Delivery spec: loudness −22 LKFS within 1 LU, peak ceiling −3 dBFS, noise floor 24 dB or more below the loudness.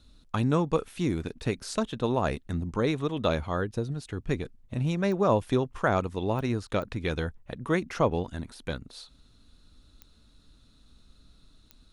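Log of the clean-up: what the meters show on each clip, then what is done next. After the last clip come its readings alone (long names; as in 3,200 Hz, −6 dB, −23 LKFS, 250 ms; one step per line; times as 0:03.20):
number of clicks 5; integrated loudness −29.5 LKFS; sample peak −11.0 dBFS; target loudness −22.0 LKFS
→ click removal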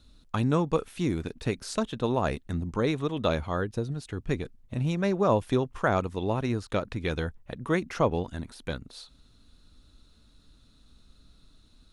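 number of clicks 0; integrated loudness −29.5 LKFS; sample peak −11.0 dBFS; target loudness −22.0 LKFS
→ level +7.5 dB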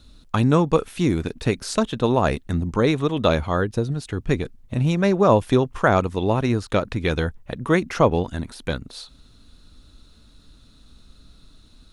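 integrated loudness −22.0 LKFS; sample peak −3.5 dBFS; background noise floor −52 dBFS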